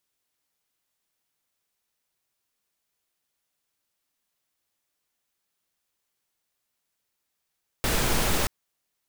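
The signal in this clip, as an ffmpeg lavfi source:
ffmpeg -f lavfi -i "anoisesrc=color=pink:amplitude=0.324:duration=0.63:sample_rate=44100:seed=1" out.wav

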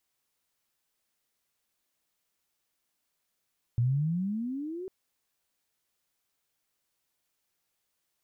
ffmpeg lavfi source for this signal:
ffmpeg -f lavfi -i "aevalsrc='pow(10,(-22-13.5*t/1.1)/20)*sin(2*PI*115*1.1/(21*log(2)/12)*(exp(21*log(2)/12*t/1.1)-1))':duration=1.1:sample_rate=44100" out.wav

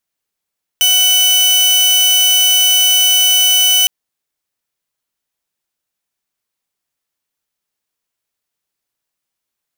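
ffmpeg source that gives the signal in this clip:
ffmpeg -f lavfi -i "aevalsrc='0.501*(2*mod(2990*t,1)-1)':duration=3.06:sample_rate=44100" out.wav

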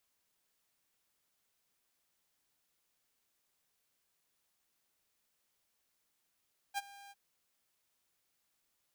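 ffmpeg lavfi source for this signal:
ffmpeg -f lavfi -i "aevalsrc='0.0335*(2*mod(801*t,1)-1)':duration=0.403:sample_rate=44100,afade=type=in:duration=0.038,afade=type=out:start_time=0.038:duration=0.028:silence=0.1,afade=type=out:start_time=0.37:duration=0.033" out.wav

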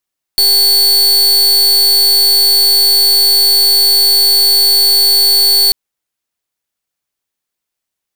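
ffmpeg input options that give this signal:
ffmpeg -f lavfi -i "aevalsrc='0.355*(2*lt(mod(4450*t,1),0.43)-1)':duration=5.34:sample_rate=44100" out.wav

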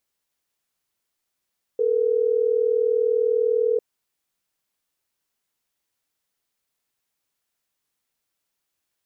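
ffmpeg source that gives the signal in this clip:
ffmpeg -f lavfi -i "aevalsrc='0.0944*(sin(2*PI*440*t)+sin(2*PI*480*t))*clip(min(mod(t,6),2-mod(t,6))/0.005,0,1)':duration=3.12:sample_rate=44100" out.wav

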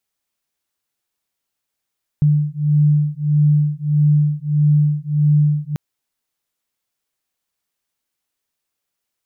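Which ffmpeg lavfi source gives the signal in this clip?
ffmpeg -f lavfi -i "aevalsrc='0.168*(sin(2*PI*148*t)+sin(2*PI*149.6*t))':duration=3.54:sample_rate=44100" out.wav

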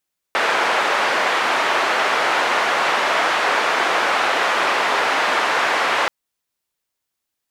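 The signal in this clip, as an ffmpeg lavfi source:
ffmpeg -f lavfi -i "anoisesrc=color=white:duration=5.73:sample_rate=44100:seed=1,highpass=frequency=550,lowpass=frequency=1600,volume=-1dB" out.wav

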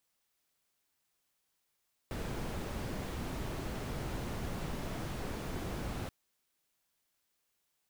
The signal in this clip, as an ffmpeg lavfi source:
ffmpeg -f lavfi -i "anoisesrc=color=brown:amplitude=0.0589:duration=3.98:sample_rate=44100:seed=1" out.wav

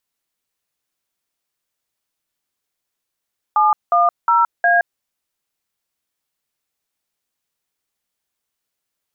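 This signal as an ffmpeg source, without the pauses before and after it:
ffmpeg -f lavfi -i "aevalsrc='0.211*clip(min(mod(t,0.36),0.17-mod(t,0.36))/0.002,0,1)*(eq(floor(t/0.36),0)*(sin(2*PI*852*mod(t,0.36))+sin(2*PI*1209*mod(t,0.36)))+eq(floor(t/0.36),1)*(sin(2*PI*697*mod(t,0.36))+sin(2*PI*1209*mod(t,0.36)))+eq(floor(t/0.36),2)*(sin(2*PI*941*mod(t,0.36))+sin(2*PI*1336*mod(t,0.36)))+eq(floor(t/0.36),3)*(sin(2*PI*697*mod(t,0.36))+sin(2*PI*1633*mod(t,0.36))))':duration=1.44:sample_rate=44100" out.wav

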